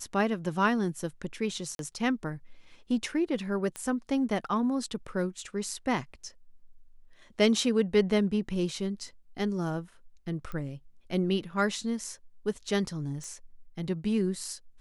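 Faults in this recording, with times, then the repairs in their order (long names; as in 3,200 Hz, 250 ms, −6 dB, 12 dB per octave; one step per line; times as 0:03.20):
0:01.75–0:01.79: drop-out 42 ms
0:03.76: click −21 dBFS
0:10.52: click −26 dBFS
0:13.24: click −30 dBFS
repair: click removal
repair the gap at 0:01.75, 42 ms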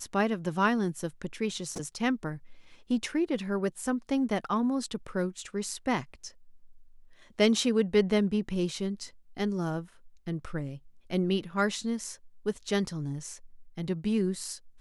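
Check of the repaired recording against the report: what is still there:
0:10.52: click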